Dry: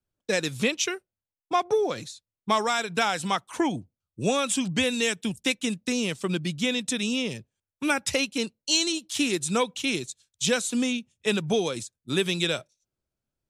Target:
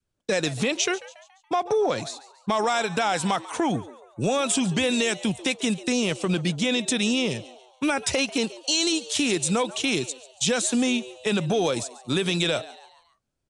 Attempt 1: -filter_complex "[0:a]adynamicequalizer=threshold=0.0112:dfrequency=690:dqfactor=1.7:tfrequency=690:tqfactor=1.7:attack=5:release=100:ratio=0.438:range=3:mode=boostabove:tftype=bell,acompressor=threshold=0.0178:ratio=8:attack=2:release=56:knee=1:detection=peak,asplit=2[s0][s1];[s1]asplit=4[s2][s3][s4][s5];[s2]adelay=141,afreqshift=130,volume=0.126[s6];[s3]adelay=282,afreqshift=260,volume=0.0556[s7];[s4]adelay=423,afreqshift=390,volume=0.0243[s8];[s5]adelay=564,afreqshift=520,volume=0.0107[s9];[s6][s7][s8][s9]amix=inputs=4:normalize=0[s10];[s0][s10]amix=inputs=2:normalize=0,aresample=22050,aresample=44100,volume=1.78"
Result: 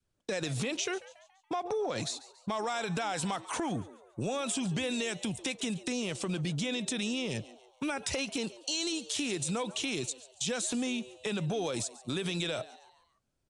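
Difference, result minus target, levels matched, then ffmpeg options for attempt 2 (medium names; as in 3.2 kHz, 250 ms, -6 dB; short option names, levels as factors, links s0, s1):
compression: peak gain reduction +10 dB
-filter_complex "[0:a]adynamicequalizer=threshold=0.0112:dfrequency=690:dqfactor=1.7:tfrequency=690:tqfactor=1.7:attack=5:release=100:ratio=0.438:range=3:mode=boostabove:tftype=bell,acompressor=threshold=0.0668:ratio=8:attack=2:release=56:knee=1:detection=peak,asplit=2[s0][s1];[s1]asplit=4[s2][s3][s4][s5];[s2]adelay=141,afreqshift=130,volume=0.126[s6];[s3]adelay=282,afreqshift=260,volume=0.0556[s7];[s4]adelay=423,afreqshift=390,volume=0.0243[s8];[s5]adelay=564,afreqshift=520,volume=0.0107[s9];[s6][s7][s8][s9]amix=inputs=4:normalize=0[s10];[s0][s10]amix=inputs=2:normalize=0,aresample=22050,aresample=44100,volume=1.78"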